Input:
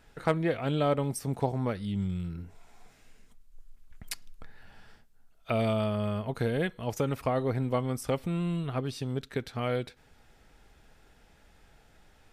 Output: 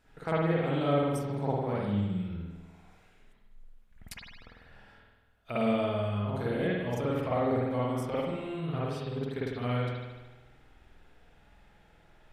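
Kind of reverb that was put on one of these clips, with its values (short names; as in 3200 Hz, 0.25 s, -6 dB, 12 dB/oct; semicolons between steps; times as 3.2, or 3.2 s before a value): spring tank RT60 1.2 s, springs 49 ms, chirp 30 ms, DRR -8 dB; gain -8.5 dB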